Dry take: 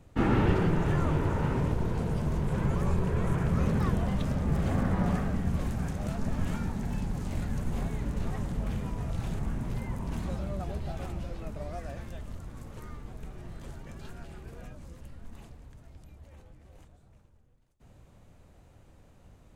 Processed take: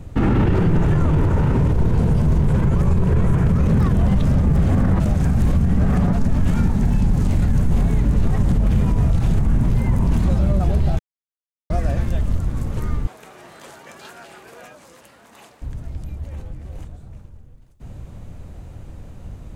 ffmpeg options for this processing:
-filter_complex "[0:a]asettb=1/sr,asplit=3[a][b][c];[a]atrim=end=13.074[d];[b]atrim=start=13.07:end=15.62,asetpts=PTS-STARTPTS,afade=t=in:d=0.004:c=qsin,afade=t=out:st=2.546:d=0.004:c=qsin,highpass=650[e];[c]atrim=start=15.616[f];[d][e]acrossfade=d=0.004:c1=hsin:c2=qsin[g];[g][f]acrossfade=d=0.004:c1=qsin:c2=hsin,asplit=5[h][i][j][k][l];[h]atrim=end=5.002[m];[i]atrim=start=4.998:end=6.132,asetpts=PTS-STARTPTS,areverse[n];[j]atrim=start=6.128:end=10.99,asetpts=PTS-STARTPTS,afade=t=out:st=4.858:d=0.004:c=hsin[o];[k]atrim=start=10.99:end=11.7,asetpts=PTS-STARTPTS,volume=0[p];[l]atrim=start=11.7,asetpts=PTS-STARTPTS,afade=t=in:d=0.004:c=hsin[q];[m][n]acrossfade=d=0.004:c1=hsin:c2=hsin[r];[o][p][q]concat=n=3:v=0:a=1[s];[r][s]acrossfade=d=0.004:c1=hsin:c2=hsin,lowshelf=f=250:g=9.5,alimiter=level_in=20.5dB:limit=-1dB:release=50:level=0:latency=1,volume=-8.5dB"

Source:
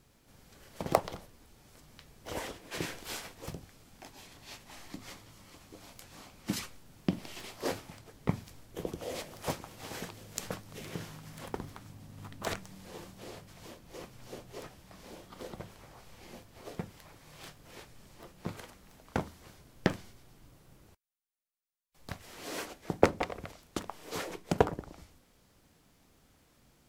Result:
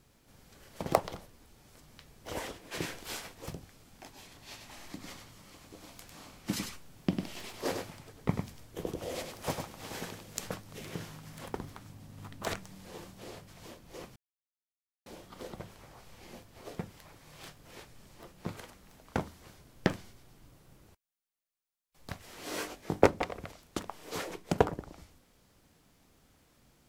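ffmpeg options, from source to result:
-filter_complex "[0:a]asettb=1/sr,asplit=3[a][b][c];[a]atrim=end=4.464[d];[b]atrim=start=4.46:end=10.32,asetpts=PTS-STARTPTS,afade=t=in:d=0.004:c=qsin,afade=t=out:st=5.856:d=0.004:c=qsin,aecho=1:1:100:0.501,atrim=end_sample=258426[e];[c]atrim=start=10.316[f];[d][e]acrossfade=d=0.004:c1=hsin:c2=qsin[g];[g][f]acrossfade=d=0.004:c1=qsin:c2=hsin,asettb=1/sr,asplit=3[h][i][j];[h]atrim=end=22.444[k];[i]atrim=start=22.44:end=23.07,asetpts=PTS-STARTPTS,afade=t=in:d=0.004:c=qsin,afade=t=out:st=0.626:d=0.004:c=qsin,asplit=2[l][m];[m]adelay=20,volume=-3dB[n];[l][n]amix=inputs=2:normalize=0,atrim=end_sample=27783[o];[j]atrim=start=23.066[p];[k][o]acrossfade=d=0.004:c1=hsin:c2=qsin[q];[q][p]acrossfade=d=0.004:c1=qsin:c2=hsin,asplit=3[r][s][t];[r]atrim=end=14.16,asetpts=PTS-STARTPTS,afade=t=out:st=14.156:d=0.004:c=hsin[u];[s]atrim=start=14.16:end=15.06,asetpts=PTS-STARTPTS,volume=0[v];[t]atrim=start=15.06,asetpts=PTS-STARTPTS,afade=t=in:d=0.004:c=hsin[w];[u][v][w]concat=n=3:v=0:a=1"

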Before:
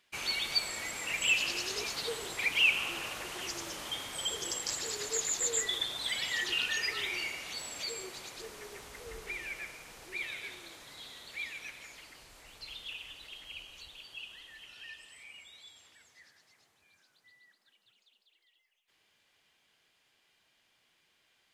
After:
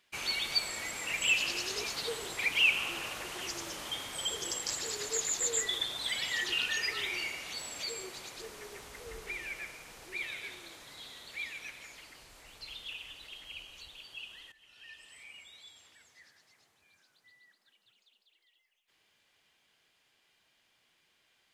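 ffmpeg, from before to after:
-filter_complex "[0:a]asplit=2[a][b];[a]atrim=end=14.52,asetpts=PTS-STARTPTS,afade=t=out:st=14.516:d=0.004:c=hsin:silence=0.149624[c];[b]atrim=start=14.52,asetpts=PTS-STARTPTS,afade=t=in:d=0.64:silence=0.149624[d];[c][d]concat=n=2:v=0:a=1"

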